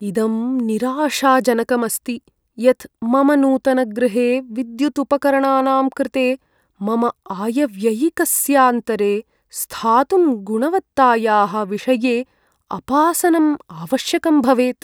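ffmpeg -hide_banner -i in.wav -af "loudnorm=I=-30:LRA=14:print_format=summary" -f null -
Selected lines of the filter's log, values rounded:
Input Integrated:    -17.5 LUFS
Input True Peak:      -1.5 dBTP
Input LRA:             1.5 LU
Input Threshold:     -27.8 LUFS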